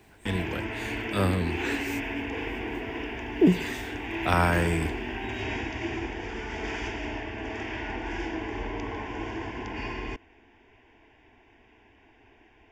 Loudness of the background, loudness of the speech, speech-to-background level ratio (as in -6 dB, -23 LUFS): -33.5 LUFS, -28.0 LUFS, 5.5 dB